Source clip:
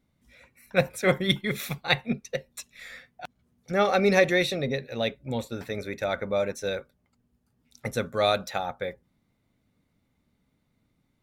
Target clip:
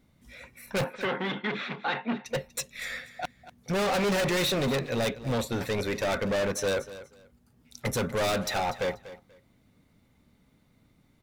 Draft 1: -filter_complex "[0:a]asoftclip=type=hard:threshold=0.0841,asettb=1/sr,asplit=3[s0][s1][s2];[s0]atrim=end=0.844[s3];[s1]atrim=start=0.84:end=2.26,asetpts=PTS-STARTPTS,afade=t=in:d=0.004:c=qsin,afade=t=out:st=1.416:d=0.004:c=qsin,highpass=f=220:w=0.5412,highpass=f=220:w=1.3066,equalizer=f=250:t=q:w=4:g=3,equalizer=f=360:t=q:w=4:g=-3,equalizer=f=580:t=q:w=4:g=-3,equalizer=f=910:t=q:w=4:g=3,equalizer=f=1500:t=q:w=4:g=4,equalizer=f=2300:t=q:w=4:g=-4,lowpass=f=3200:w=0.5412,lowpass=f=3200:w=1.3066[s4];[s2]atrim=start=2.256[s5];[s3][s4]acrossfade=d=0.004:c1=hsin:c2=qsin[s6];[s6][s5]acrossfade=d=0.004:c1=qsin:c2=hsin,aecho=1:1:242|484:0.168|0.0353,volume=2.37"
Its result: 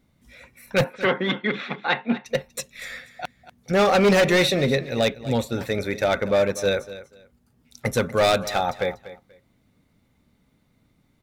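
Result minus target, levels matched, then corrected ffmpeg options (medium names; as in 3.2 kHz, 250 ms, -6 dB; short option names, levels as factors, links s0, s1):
hard clipper: distortion -6 dB
-filter_complex "[0:a]asoftclip=type=hard:threshold=0.0237,asettb=1/sr,asplit=3[s0][s1][s2];[s0]atrim=end=0.844[s3];[s1]atrim=start=0.84:end=2.26,asetpts=PTS-STARTPTS,afade=t=in:d=0.004:c=qsin,afade=t=out:st=1.416:d=0.004:c=qsin,highpass=f=220:w=0.5412,highpass=f=220:w=1.3066,equalizer=f=250:t=q:w=4:g=3,equalizer=f=360:t=q:w=4:g=-3,equalizer=f=580:t=q:w=4:g=-3,equalizer=f=910:t=q:w=4:g=3,equalizer=f=1500:t=q:w=4:g=4,equalizer=f=2300:t=q:w=4:g=-4,lowpass=f=3200:w=0.5412,lowpass=f=3200:w=1.3066[s4];[s2]atrim=start=2.256[s5];[s3][s4]acrossfade=d=0.004:c1=hsin:c2=qsin[s6];[s6][s5]acrossfade=d=0.004:c1=qsin:c2=hsin,aecho=1:1:242|484:0.168|0.0353,volume=2.37"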